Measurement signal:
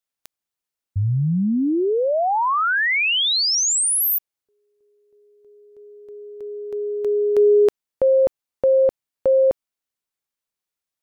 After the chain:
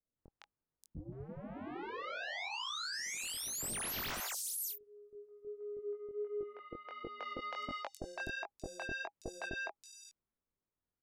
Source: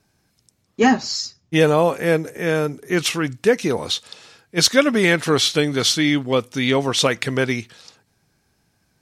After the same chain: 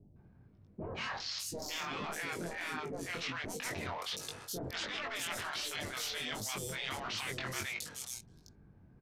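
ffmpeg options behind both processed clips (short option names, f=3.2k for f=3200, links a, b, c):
-filter_complex "[0:a]lowshelf=f=88:g=5.5,bandreject=f=810:w=25,adynamicsmooth=sensitivity=4.5:basefreq=870,aresample=32000,aresample=44100,afftfilt=real='re*lt(hypot(re,im),0.251)':imag='im*lt(hypot(re,im),0.251)':win_size=1024:overlap=0.75,acrossover=split=640|5500[a][b][c];[b]adelay=160[d];[c]adelay=580[e];[a][d][e]amix=inputs=3:normalize=0,areverse,acompressor=threshold=-45dB:ratio=5:attack=4.8:release=75:knee=1:detection=peak,areverse,flanger=delay=19.5:depth=3.8:speed=1.4,volume=9dB"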